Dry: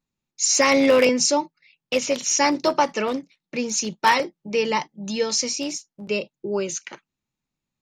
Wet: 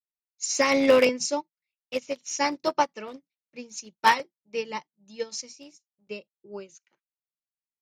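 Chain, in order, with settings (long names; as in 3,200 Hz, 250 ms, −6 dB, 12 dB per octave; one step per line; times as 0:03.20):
expander for the loud parts 2.5 to 1, over −35 dBFS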